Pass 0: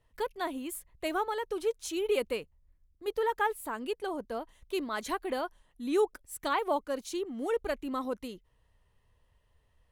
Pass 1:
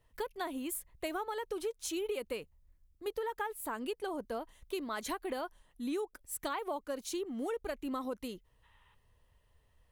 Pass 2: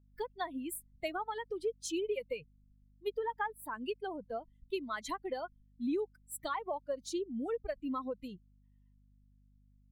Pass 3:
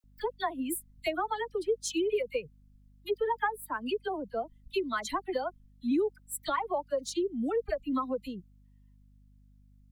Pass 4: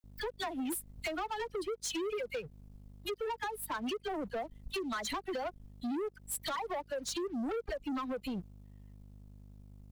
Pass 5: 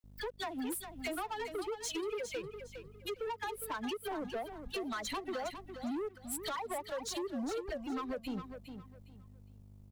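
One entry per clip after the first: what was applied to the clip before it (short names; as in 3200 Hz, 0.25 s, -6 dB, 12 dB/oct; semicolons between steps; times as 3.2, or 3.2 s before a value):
spectral gain 8.63–8.94, 790–4000 Hz +12 dB; high shelf 11000 Hz +6 dB; compressor 12:1, threshold -33 dBFS, peak gain reduction 12 dB
per-bin expansion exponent 2; high shelf 7400 Hz -7.5 dB; hum 50 Hz, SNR 26 dB; gain +4.5 dB
dispersion lows, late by 40 ms, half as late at 1400 Hz; gain +6 dB
compressor 6:1, threshold -36 dBFS, peak gain reduction 12 dB; sample leveller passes 2; soft clip -31.5 dBFS, distortion -18 dB
feedback echo 0.409 s, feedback 25%, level -9 dB; gain -2 dB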